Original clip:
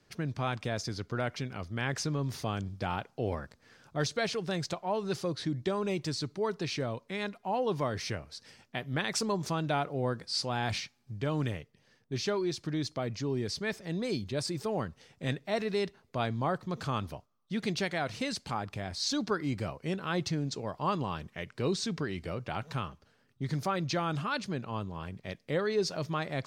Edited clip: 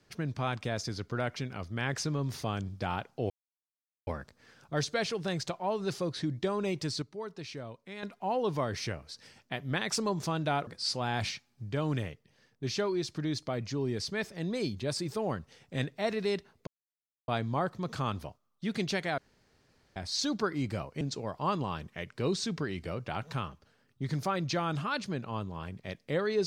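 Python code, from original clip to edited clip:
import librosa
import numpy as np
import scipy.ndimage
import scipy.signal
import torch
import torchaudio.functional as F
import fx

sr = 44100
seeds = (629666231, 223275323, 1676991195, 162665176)

y = fx.edit(x, sr, fx.insert_silence(at_s=3.3, length_s=0.77),
    fx.clip_gain(start_s=6.25, length_s=1.01, db=-8.0),
    fx.cut(start_s=9.9, length_s=0.26),
    fx.insert_silence(at_s=16.16, length_s=0.61),
    fx.room_tone_fill(start_s=18.06, length_s=0.78),
    fx.cut(start_s=19.89, length_s=0.52), tone=tone)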